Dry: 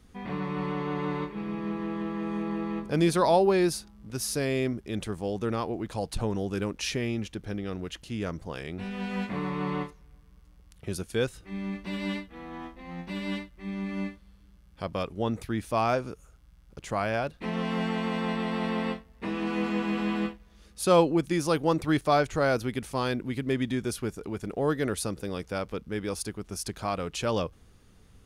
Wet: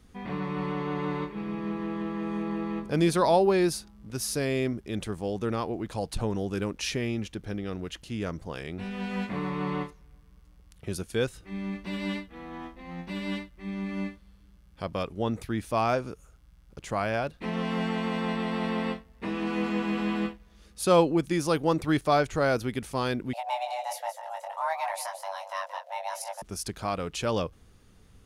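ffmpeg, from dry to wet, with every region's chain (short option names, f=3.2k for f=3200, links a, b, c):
-filter_complex "[0:a]asettb=1/sr,asplit=3[a][b][c];[a]atrim=end=23.334[d];[b]atrim=start=23.33:end=26.42,asetpts=PTS-STARTPTS,afade=t=in:d=0.004:c=qsin,afade=t=out:st=3.086:d=0.004:c=qsin,flanger=delay=18.5:depth=3.7:speed=1.4,afreqshift=480,aecho=1:1:176:0.282,atrim=end_sample=136269[e];[c]atrim=start=26.416[f];[d][e]acrossfade=d=0.004:c1=hsin:c2=qsin[g];[g][f]acrossfade=d=0.004:c1=qsin:c2=hsin"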